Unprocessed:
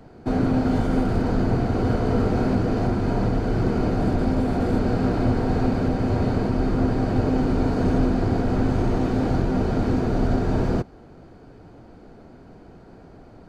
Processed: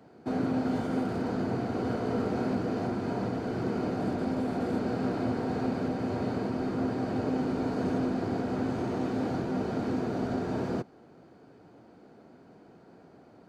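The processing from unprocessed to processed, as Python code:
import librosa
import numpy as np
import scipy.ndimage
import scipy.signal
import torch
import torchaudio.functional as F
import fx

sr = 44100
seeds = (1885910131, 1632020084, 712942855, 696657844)

y = scipy.signal.sosfilt(scipy.signal.butter(2, 160.0, 'highpass', fs=sr, output='sos'), x)
y = y * 10.0 ** (-6.5 / 20.0)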